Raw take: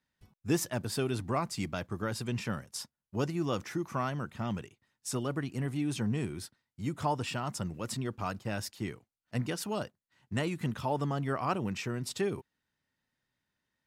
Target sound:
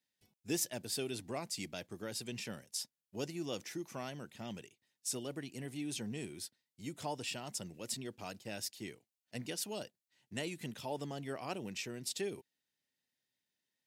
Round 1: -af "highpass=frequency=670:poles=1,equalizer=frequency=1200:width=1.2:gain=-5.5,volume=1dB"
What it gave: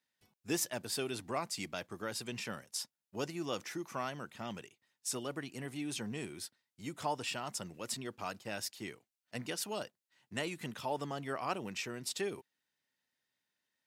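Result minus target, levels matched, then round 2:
1,000 Hz band +5.0 dB
-af "highpass=frequency=670:poles=1,equalizer=frequency=1200:width=1.2:gain=-16,volume=1dB"

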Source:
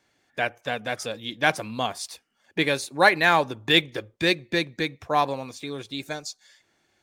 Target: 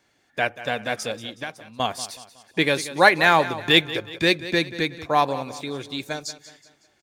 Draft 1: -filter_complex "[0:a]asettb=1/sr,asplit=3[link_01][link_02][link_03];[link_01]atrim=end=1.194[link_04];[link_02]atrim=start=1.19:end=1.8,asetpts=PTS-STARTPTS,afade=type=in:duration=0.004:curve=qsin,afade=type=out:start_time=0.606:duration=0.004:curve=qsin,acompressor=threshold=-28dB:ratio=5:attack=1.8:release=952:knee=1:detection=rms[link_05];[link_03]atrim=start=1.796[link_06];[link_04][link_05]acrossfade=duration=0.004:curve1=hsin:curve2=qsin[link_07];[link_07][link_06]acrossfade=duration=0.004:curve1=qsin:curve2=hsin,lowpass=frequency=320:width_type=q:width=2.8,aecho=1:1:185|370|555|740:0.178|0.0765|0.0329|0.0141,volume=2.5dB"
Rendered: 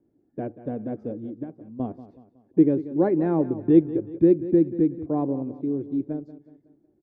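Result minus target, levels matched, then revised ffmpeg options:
250 Hz band +9.5 dB
-filter_complex "[0:a]asettb=1/sr,asplit=3[link_01][link_02][link_03];[link_01]atrim=end=1.194[link_04];[link_02]atrim=start=1.19:end=1.8,asetpts=PTS-STARTPTS,afade=type=in:duration=0.004:curve=qsin,afade=type=out:start_time=0.606:duration=0.004:curve=qsin,acompressor=threshold=-28dB:ratio=5:attack=1.8:release=952:knee=1:detection=rms[link_05];[link_03]atrim=start=1.796[link_06];[link_04][link_05]acrossfade=duration=0.004:curve1=hsin:curve2=qsin[link_07];[link_07][link_06]acrossfade=duration=0.004:curve1=qsin:curve2=hsin,aecho=1:1:185|370|555|740:0.178|0.0765|0.0329|0.0141,volume=2.5dB"

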